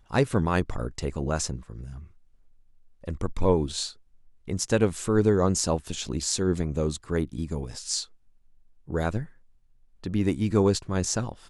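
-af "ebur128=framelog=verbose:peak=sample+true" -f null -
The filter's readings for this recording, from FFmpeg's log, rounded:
Integrated loudness:
  I:         -27.0 LUFS
  Threshold: -37.7 LUFS
Loudness range:
  LRA:         6.1 LU
  Threshold: -48.5 LUFS
  LRA low:   -32.1 LUFS
  LRA high:  -26.0 LUFS
Sample peak:
  Peak:       -8.5 dBFS
True peak:
  Peak:       -8.5 dBFS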